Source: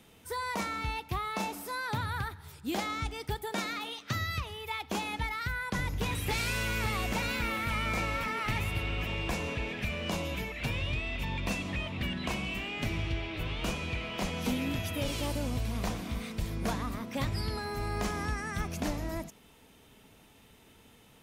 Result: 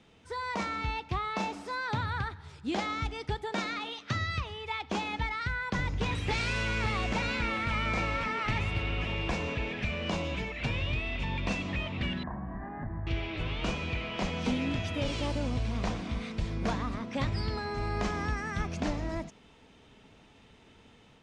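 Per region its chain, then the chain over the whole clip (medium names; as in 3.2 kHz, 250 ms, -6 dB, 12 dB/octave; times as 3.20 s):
12.23–13.07 s: elliptic low-pass 1.7 kHz + compression 4:1, threshold -37 dBFS + comb 1.1 ms, depth 55%
whole clip: Bessel low-pass 5 kHz, order 6; level rider gain up to 3 dB; trim -1.5 dB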